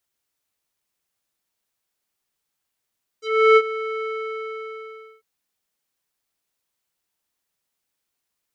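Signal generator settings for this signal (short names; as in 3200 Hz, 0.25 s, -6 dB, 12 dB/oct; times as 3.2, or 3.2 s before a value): synth note square A4 12 dB/oct, low-pass 1900 Hz, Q 3, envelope 2 oct, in 0.08 s, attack 0.346 s, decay 0.05 s, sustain -16 dB, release 1.19 s, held 0.81 s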